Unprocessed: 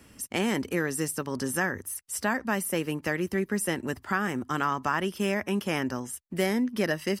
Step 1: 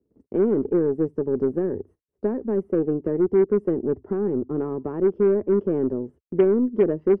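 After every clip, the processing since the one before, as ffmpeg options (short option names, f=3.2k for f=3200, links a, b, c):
-af "lowpass=f=410:t=q:w=4.6,aeval=exprs='0.447*(cos(1*acos(clip(val(0)/0.447,-1,1)))-cos(1*PI/2))+0.0158*(cos(5*acos(clip(val(0)/0.447,-1,1)))-cos(5*PI/2))+0.0224*(cos(6*acos(clip(val(0)/0.447,-1,1)))-cos(6*PI/2))+0.0251*(cos(8*acos(clip(val(0)/0.447,-1,1)))-cos(8*PI/2))':c=same,agate=range=-23dB:threshold=-46dB:ratio=16:detection=peak"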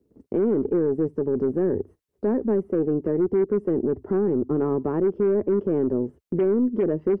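-filter_complex "[0:a]asplit=2[a][b];[b]acompressor=threshold=-26dB:ratio=6,volume=-2dB[c];[a][c]amix=inputs=2:normalize=0,alimiter=limit=-16dB:level=0:latency=1:release=21,volume=1dB"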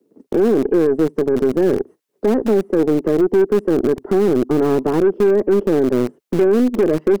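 -filter_complex "[0:a]acrossover=split=180|440|650[a][b][c][d];[a]acrusher=bits=3:dc=4:mix=0:aa=0.000001[e];[e][b][c][d]amix=inputs=4:normalize=0,aeval=exprs='0.237*(cos(1*acos(clip(val(0)/0.237,-1,1)))-cos(1*PI/2))+0.0075*(cos(4*acos(clip(val(0)/0.237,-1,1)))-cos(4*PI/2))+0.0168*(cos(6*acos(clip(val(0)/0.237,-1,1)))-cos(6*PI/2))+0.0015*(cos(8*acos(clip(val(0)/0.237,-1,1)))-cos(8*PI/2))':c=same,volume=7.5dB"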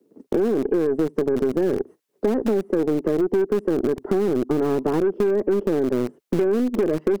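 -af "acompressor=threshold=-17dB:ratio=6"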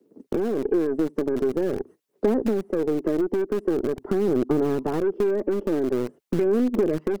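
-af "aphaser=in_gain=1:out_gain=1:delay=3.5:decay=0.29:speed=0.45:type=sinusoidal,volume=-3dB"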